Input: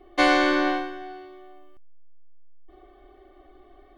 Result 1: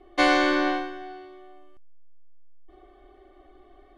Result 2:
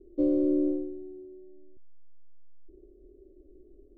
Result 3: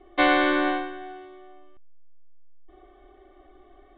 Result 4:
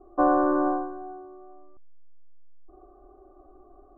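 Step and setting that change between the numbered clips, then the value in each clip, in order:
elliptic low-pass, frequency: 12 kHz, 500 Hz, 3.7 kHz, 1.3 kHz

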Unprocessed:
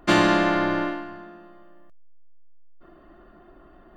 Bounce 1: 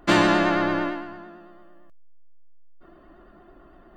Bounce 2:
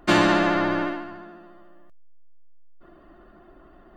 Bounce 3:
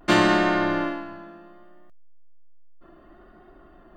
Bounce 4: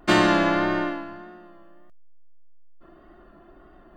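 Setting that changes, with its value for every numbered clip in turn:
vibrato, rate: 8.9 Hz, 14 Hz, 0.66 Hz, 1.7 Hz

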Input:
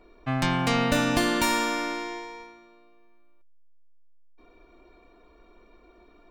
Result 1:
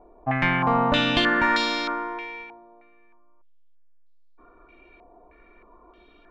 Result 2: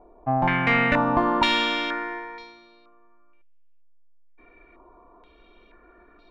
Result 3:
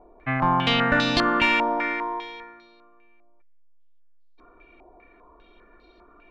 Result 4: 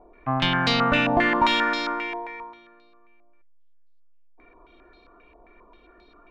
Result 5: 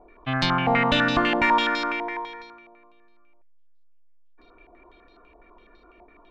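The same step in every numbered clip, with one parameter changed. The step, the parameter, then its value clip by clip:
step-sequenced low-pass, rate: 3.2 Hz, 2.1 Hz, 5 Hz, 7.5 Hz, 12 Hz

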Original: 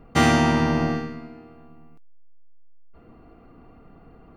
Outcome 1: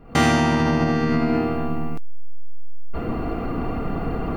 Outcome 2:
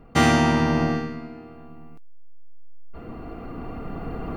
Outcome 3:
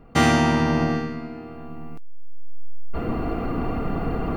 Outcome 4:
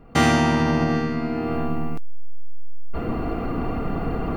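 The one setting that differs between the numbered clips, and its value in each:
recorder AGC, rising by: 82 dB/s, 5.2 dB/s, 13 dB/s, 33 dB/s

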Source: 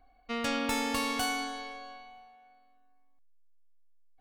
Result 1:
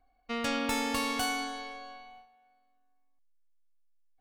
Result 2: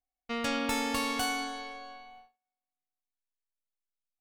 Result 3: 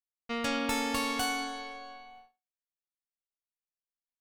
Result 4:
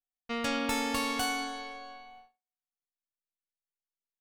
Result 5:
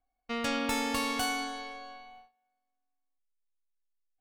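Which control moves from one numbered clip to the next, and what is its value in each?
gate, range: -7 dB, -32 dB, -58 dB, -45 dB, -20 dB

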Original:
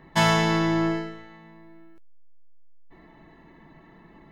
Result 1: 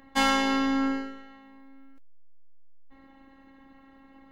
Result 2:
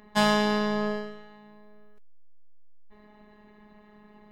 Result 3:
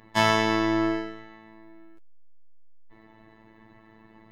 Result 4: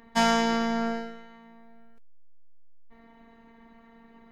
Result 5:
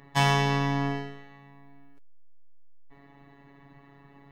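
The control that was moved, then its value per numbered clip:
robot voice, frequency: 270 Hz, 210 Hz, 110 Hz, 230 Hz, 140 Hz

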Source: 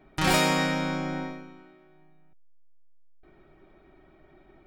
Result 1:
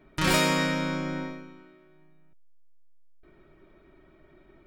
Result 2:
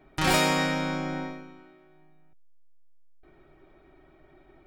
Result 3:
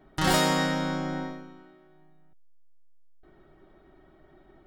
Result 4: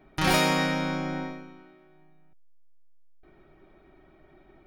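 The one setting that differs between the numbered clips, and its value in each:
band-stop, frequency: 770 Hz, 200 Hz, 2.4 kHz, 7.7 kHz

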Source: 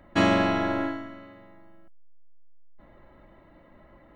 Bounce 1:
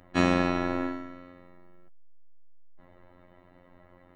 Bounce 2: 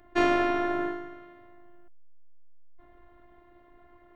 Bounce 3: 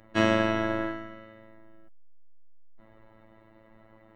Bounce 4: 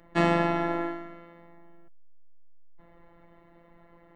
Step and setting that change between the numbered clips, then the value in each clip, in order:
robot voice, frequency: 89 Hz, 350 Hz, 110 Hz, 170 Hz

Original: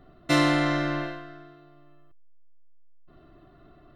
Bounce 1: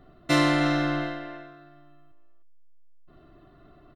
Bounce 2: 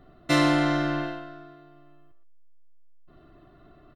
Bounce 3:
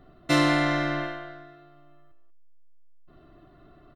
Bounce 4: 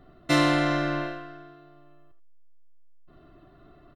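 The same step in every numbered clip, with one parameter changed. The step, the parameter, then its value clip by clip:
speakerphone echo, time: 310 ms, 120 ms, 190 ms, 80 ms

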